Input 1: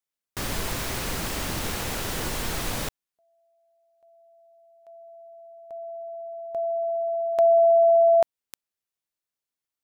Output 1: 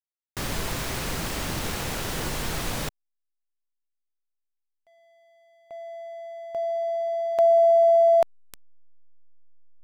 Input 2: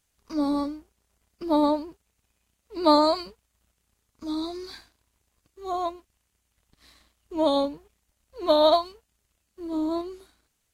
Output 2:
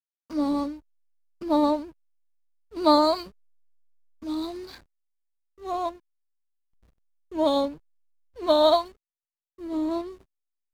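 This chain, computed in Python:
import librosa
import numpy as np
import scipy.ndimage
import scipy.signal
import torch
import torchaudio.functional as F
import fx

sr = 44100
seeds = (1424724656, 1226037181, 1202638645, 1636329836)

y = fx.peak_eq(x, sr, hz=150.0, db=4.5, octaves=0.25)
y = fx.backlash(y, sr, play_db=-39.5)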